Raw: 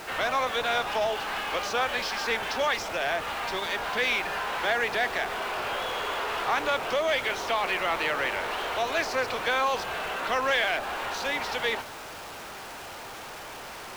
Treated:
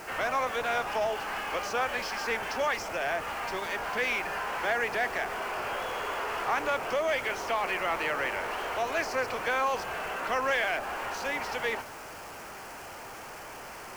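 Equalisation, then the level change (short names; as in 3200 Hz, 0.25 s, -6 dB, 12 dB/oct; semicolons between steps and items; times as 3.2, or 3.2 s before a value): bell 3700 Hz -10.5 dB 0.43 oct; -2.0 dB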